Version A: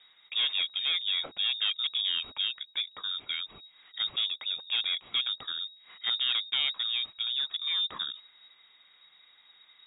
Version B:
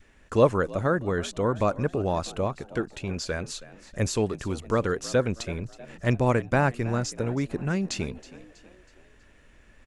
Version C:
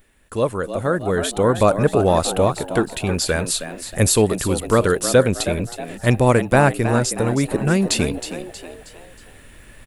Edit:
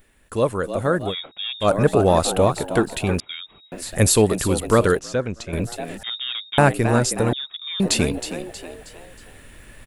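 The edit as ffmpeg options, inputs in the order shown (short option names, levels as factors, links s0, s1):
-filter_complex "[0:a]asplit=4[s0][s1][s2][s3];[2:a]asplit=6[s4][s5][s6][s7][s8][s9];[s4]atrim=end=1.15[s10];[s0]atrim=start=1.05:end=1.7[s11];[s5]atrim=start=1.6:end=3.202[s12];[s1]atrim=start=3.198:end=3.722[s13];[s6]atrim=start=3.718:end=4.992[s14];[1:a]atrim=start=4.988:end=5.532[s15];[s7]atrim=start=5.528:end=6.032[s16];[s2]atrim=start=6.028:end=6.582[s17];[s8]atrim=start=6.578:end=7.332[s18];[s3]atrim=start=7.328:end=7.802[s19];[s9]atrim=start=7.798[s20];[s10][s11]acrossfade=d=0.1:c1=tri:c2=tri[s21];[s21][s12]acrossfade=d=0.1:c1=tri:c2=tri[s22];[s22][s13]acrossfade=d=0.004:c1=hsin:c2=hsin[s23];[s23][s14]acrossfade=d=0.004:c1=hsin:c2=hsin[s24];[s24][s15]acrossfade=d=0.004:c1=hsin:c2=hsin[s25];[s25][s16]acrossfade=d=0.004:c1=hsin:c2=hsin[s26];[s26][s17]acrossfade=d=0.004:c1=hsin:c2=hsin[s27];[s27][s18]acrossfade=d=0.004:c1=hsin:c2=hsin[s28];[s28][s19]acrossfade=d=0.004:c1=hsin:c2=hsin[s29];[s29][s20]acrossfade=d=0.004:c1=hsin:c2=hsin"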